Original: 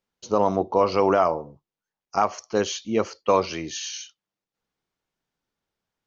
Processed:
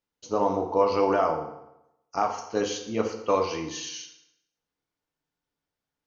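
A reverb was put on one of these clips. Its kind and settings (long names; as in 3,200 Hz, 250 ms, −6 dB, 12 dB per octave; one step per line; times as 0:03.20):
feedback delay network reverb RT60 0.86 s, low-frequency decay 0.95×, high-frequency decay 0.8×, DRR 2 dB
level −5.5 dB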